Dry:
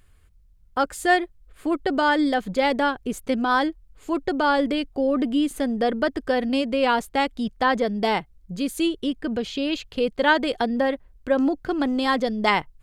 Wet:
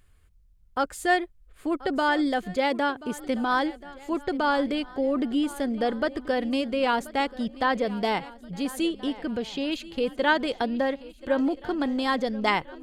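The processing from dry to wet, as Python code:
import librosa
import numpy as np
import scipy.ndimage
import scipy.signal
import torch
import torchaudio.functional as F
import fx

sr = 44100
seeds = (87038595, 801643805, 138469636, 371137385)

y = fx.highpass(x, sr, hz=93.0, slope=12, at=(2.56, 3.17))
y = fx.echo_swing(y, sr, ms=1377, ratio=3, feedback_pct=35, wet_db=-18.5)
y = F.gain(torch.from_numpy(y), -3.5).numpy()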